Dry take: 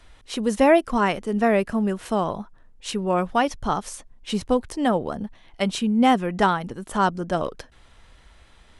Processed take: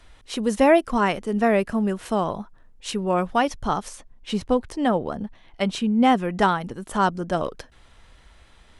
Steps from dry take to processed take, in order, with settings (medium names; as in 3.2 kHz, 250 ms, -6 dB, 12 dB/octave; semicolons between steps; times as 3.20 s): 3.88–6.16 s: treble shelf 7 kHz -8 dB